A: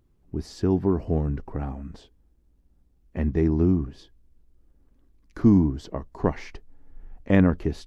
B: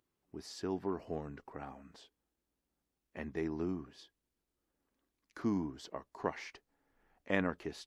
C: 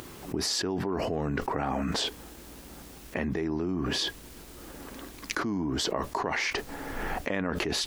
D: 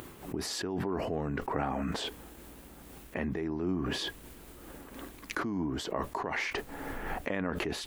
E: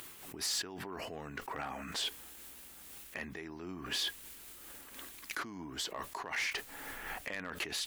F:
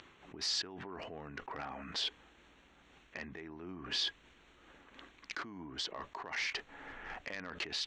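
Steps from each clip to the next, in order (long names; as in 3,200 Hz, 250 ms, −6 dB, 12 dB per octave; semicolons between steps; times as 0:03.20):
high-pass filter 990 Hz 6 dB per octave; level −4 dB
envelope flattener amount 100%
parametric band 5,300 Hz −7 dB 1 octave; amplitude modulation by smooth noise, depth 55%
tilt shelving filter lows −9.5 dB, about 1,200 Hz; hard clipping −25.5 dBFS, distortion −15 dB; level −4.5 dB
adaptive Wiener filter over 9 samples; transistor ladder low-pass 6,000 Hz, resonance 40%; level +6 dB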